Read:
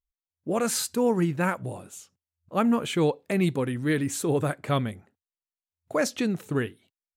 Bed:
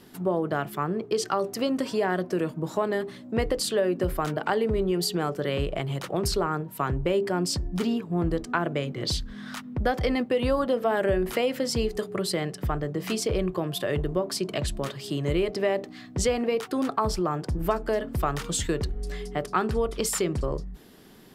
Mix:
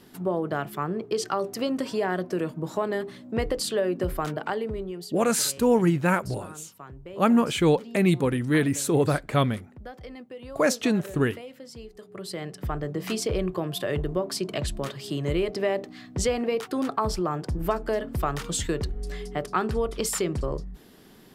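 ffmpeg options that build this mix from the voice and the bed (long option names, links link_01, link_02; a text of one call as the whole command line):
ffmpeg -i stem1.wav -i stem2.wav -filter_complex "[0:a]adelay=4650,volume=3dB[link_01];[1:a]volume=15dB,afade=type=out:start_time=4.23:duration=0.91:silence=0.16788,afade=type=in:start_time=11.99:duration=0.92:silence=0.158489[link_02];[link_01][link_02]amix=inputs=2:normalize=0" out.wav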